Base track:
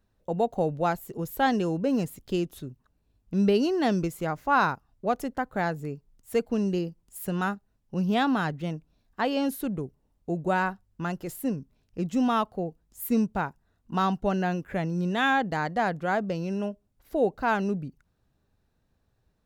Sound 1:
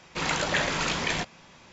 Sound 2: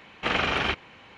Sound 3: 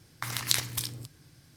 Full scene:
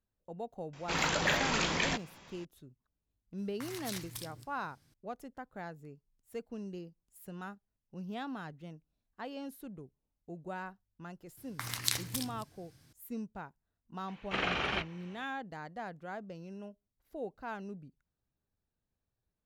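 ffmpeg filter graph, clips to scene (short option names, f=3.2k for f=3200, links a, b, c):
-filter_complex "[3:a]asplit=2[a][b];[0:a]volume=-16dB[c];[a]volume=21dB,asoftclip=hard,volume=-21dB[d];[2:a]flanger=delay=5.2:depth=2.1:regen=-73:speed=1.7:shape=sinusoidal[e];[1:a]atrim=end=1.72,asetpts=PTS-STARTPTS,volume=-3.5dB,afade=t=in:d=0.004:c=hsin,afade=t=out:st=1.716:d=0.004:c=hsin,adelay=730[f];[d]atrim=end=1.56,asetpts=PTS-STARTPTS,volume=-10.5dB,afade=t=in:d=0.004:c=hsin,afade=t=out:st=1.556:d=0.004:c=hsin,adelay=3380[g];[b]atrim=end=1.56,asetpts=PTS-STARTPTS,volume=-5dB,afade=t=in:d=0.004:c=hsin,afade=t=out:st=1.556:d=0.004:c=hsin,adelay=11370[h];[e]atrim=end=1.17,asetpts=PTS-STARTPTS,volume=-3.5dB,afade=t=in:d=0.004:c=hsin,afade=t=out:st=1.166:d=0.004:c=hsin,adelay=14080[i];[c][f][g][h][i]amix=inputs=5:normalize=0"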